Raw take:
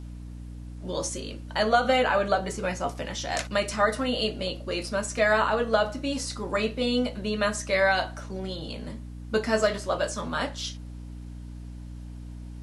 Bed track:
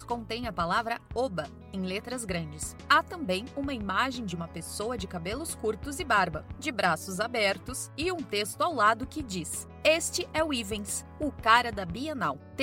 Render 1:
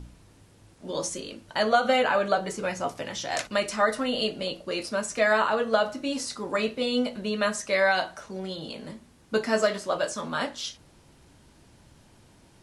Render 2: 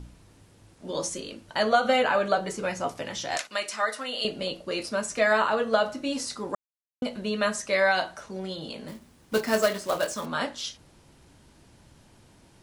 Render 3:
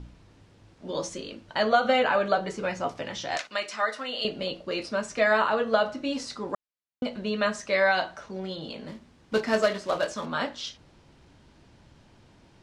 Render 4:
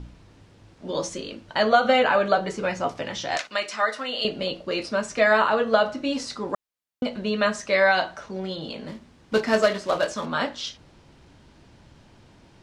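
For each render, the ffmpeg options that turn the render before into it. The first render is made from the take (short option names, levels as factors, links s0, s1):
-af "bandreject=f=60:t=h:w=4,bandreject=f=120:t=h:w=4,bandreject=f=180:t=h:w=4,bandreject=f=240:t=h:w=4,bandreject=f=300:t=h:w=4"
-filter_complex "[0:a]asettb=1/sr,asplit=3[s0][s1][s2];[s0]atrim=end=3.374[s3];[s1]atrim=start=3.37:end=4.25,asetpts=PTS-STARTPTS,afade=t=in:d=0.004:c=qsin,afade=t=out:st=0.876:d=0.004:c=qsin,highpass=f=1100:p=1[s4];[s2]atrim=start=4.246[s5];[s3][s4]acrossfade=d=0.004:c1=hsin:c2=qsin[s6];[s6][s5]acrossfade=d=0.004:c1=qsin:c2=hsin,asettb=1/sr,asplit=3[s7][s8][s9];[s7]atrim=end=8.884[s10];[s8]atrim=start=8.88:end=10.26,asetpts=PTS-STARTPTS,afade=t=in:d=0.004:c=qsin,afade=t=out:st=1.376:d=0.004:c=qsin,acrusher=bits=3:mode=log:mix=0:aa=0.000001[s11];[s9]atrim=start=10.256[s12];[s10][s11]acrossfade=d=0.004:c1=hsin:c2=qsin[s13];[s13][s12]acrossfade=d=0.004:c1=qsin:c2=hsin,asplit=3[s14][s15][s16];[s14]atrim=end=6.55,asetpts=PTS-STARTPTS,afade=t=out:st=6.546:d=0.004:c=hsin[s17];[s15]atrim=start=6.55:end=7.02,asetpts=PTS-STARTPTS,volume=0[s18];[s16]atrim=start=7.02,asetpts=PTS-STARTPTS,afade=t=in:d=0.004:c=hsin[s19];[s17][s18][s19]concat=n=3:v=0:a=1"
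-af "lowpass=5100"
-af "volume=1.5"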